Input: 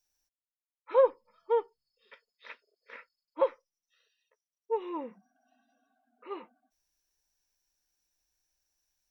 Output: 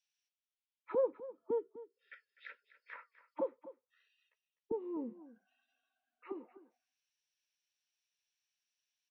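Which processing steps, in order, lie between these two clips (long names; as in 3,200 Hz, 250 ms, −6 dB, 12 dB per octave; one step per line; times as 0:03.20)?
envelope filter 250–3,000 Hz, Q 2.4, down, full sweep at −36.5 dBFS
flanger 1.1 Hz, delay 1.7 ms, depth 3.2 ms, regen +88%
gain on a spectral selection 0:01.58–0:02.69, 600–1,300 Hz −22 dB
on a send: single-tap delay 251 ms −16 dB
on the sum: level +8 dB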